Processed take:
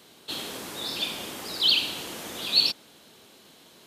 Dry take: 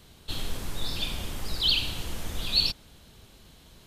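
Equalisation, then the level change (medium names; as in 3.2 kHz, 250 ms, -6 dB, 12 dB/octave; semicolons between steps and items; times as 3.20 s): Chebyshev high-pass 300 Hz, order 2; +4.0 dB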